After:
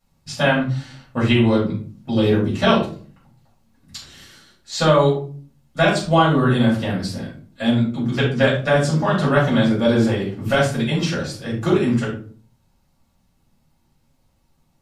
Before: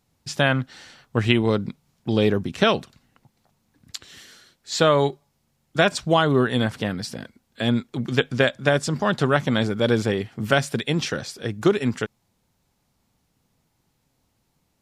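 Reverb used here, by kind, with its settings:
rectangular room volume 300 cubic metres, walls furnished, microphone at 6.5 metres
level −8 dB

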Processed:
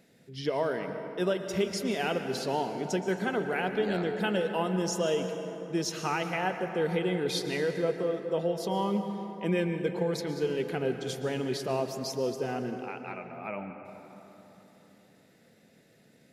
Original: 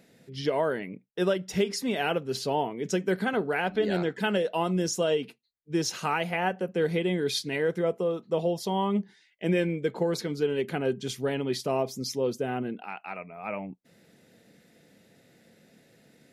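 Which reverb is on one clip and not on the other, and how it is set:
dense smooth reverb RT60 3.6 s, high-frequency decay 0.45×, pre-delay 105 ms, DRR 6.5 dB
level −3 dB

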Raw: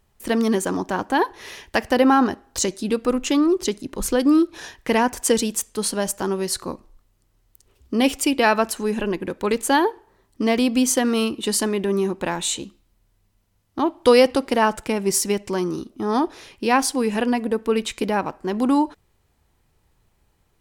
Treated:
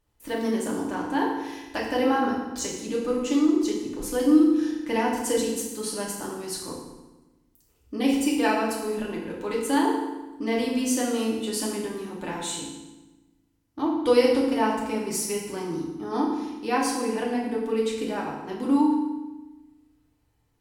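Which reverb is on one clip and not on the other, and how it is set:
feedback delay network reverb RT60 1.1 s, low-frequency decay 1.35×, high-frequency decay 0.85×, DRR −4 dB
level −12 dB

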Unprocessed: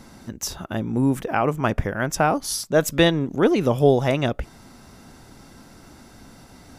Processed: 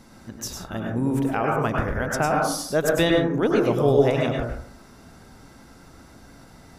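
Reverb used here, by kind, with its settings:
dense smooth reverb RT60 0.59 s, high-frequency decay 0.3×, pre-delay 90 ms, DRR −1 dB
level −4.5 dB

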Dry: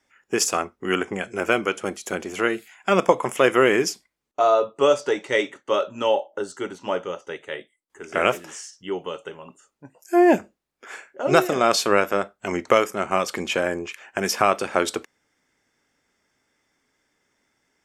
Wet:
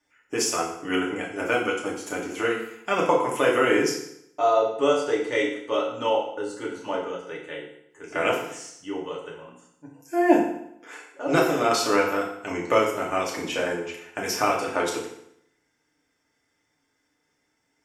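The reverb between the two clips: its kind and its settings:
feedback delay network reverb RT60 0.74 s, low-frequency decay 1.05×, high-frequency decay 0.9×, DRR −3.5 dB
level −7.5 dB

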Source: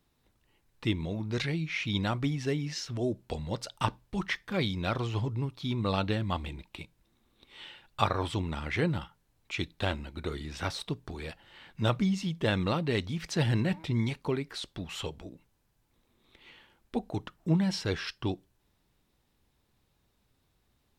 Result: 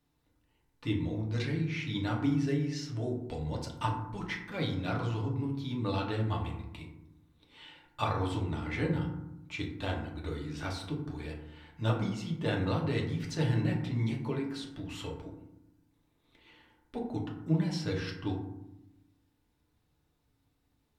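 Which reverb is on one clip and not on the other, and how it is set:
feedback delay network reverb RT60 0.86 s, low-frequency decay 1.6×, high-frequency decay 0.4×, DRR −1.5 dB
level −7.5 dB

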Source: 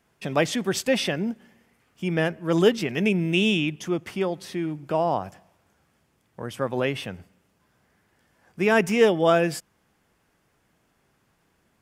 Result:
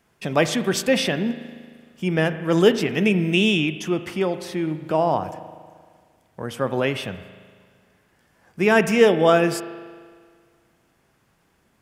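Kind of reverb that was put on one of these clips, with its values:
spring reverb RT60 1.8 s, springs 38 ms, chirp 50 ms, DRR 11 dB
level +3 dB

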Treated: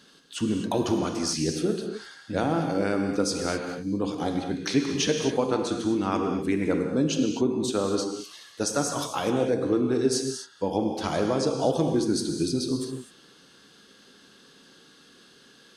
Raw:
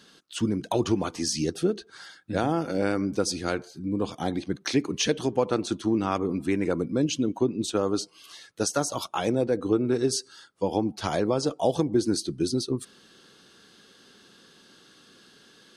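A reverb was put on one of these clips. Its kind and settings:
reverb whose tail is shaped and stops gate 280 ms flat, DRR 3 dB
level −1 dB

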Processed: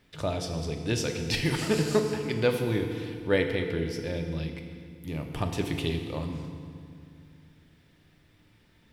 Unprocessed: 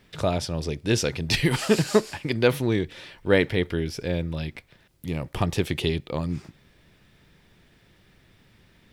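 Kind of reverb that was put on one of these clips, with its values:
feedback delay network reverb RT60 2.3 s, low-frequency decay 1.45×, high-frequency decay 0.8×, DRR 4 dB
level −6 dB

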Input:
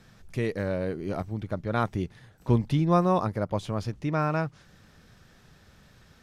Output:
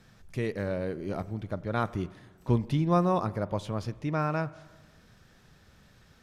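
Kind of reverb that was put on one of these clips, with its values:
spring reverb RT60 1.3 s, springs 40/45 ms, chirp 75 ms, DRR 17 dB
level −2.5 dB

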